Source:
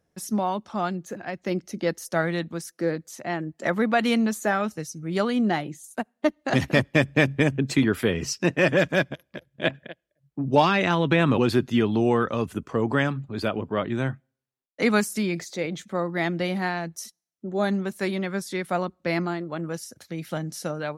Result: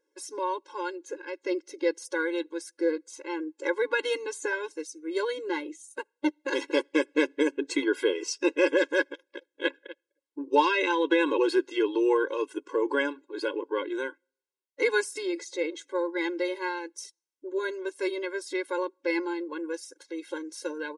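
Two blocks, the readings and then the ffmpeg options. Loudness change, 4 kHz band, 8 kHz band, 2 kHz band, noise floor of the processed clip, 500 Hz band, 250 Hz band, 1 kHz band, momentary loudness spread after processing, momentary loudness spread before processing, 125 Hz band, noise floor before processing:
−4.0 dB, −3.5 dB, −3.5 dB, −3.0 dB, below −85 dBFS, −1.5 dB, −6.0 dB, −4.5 dB, 13 LU, 12 LU, below −40 dB, −79 dBFS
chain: -af "aresample=22050,aresample=44100,afftfilt=real='re*eq(mod(floor(b*sr/1024/280),2),1)':imag='im*eq(mod(floor(b*sr/1024/280),2),1)':win_size=1024:overlap=0.75"

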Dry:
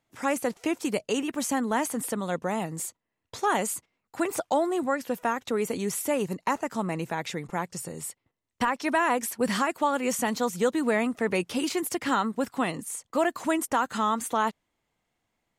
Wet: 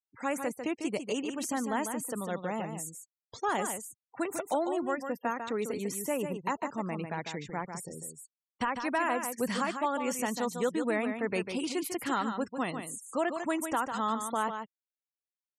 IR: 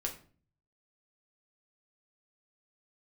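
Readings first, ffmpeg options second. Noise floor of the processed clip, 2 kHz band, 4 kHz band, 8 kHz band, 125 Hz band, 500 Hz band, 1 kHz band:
below −85 dBFS, −5.0 dB, −5.5 dB, −5.5 dB, −4.5 dB, −5.0 dB, −5.0 dB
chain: -af "afftfilt=real='re*gte(hypot(re,im),0.0112)':imag='im*gte(hypot(re,im),0.0112)':win_size=1024:overlap=0.75,aecho=1:1:148:0.422,volume=-5.5dB"

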